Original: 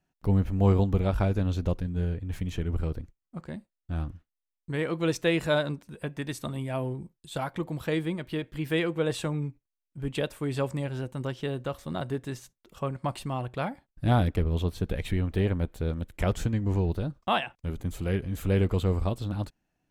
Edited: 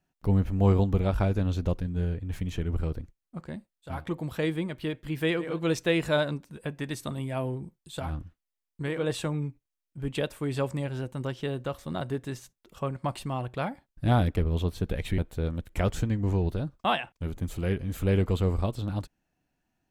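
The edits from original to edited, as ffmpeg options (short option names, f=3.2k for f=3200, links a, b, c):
-filter_complex "[0:a]asplit=6[a][b][c][d][e][f];[a]atrim=end=4.06[g];[b]atrim=start=7.31:end=9.09[h];[c]atrim=start=4.74:end=7.55[i];[d]atrim=start=3.82:end=4.98[j];[e]atrim=start=8.85:end=15.182[k];[f]atrim=start=15.608[l];[g][h]acrossfade=d=0.24:c1=tri:c2=tri[m];[m][i]acrossfade=d=0.24:c1=tri:c2=tri[n];[n][j]acrossfade=d=0.24:c1=tri:c2=tri[o];[o][k]acrossfade=d=0.24:c1=tri:c2=tri[p];[p][l]acrossfade=d=0.004:c1=hsin:c2=hsin"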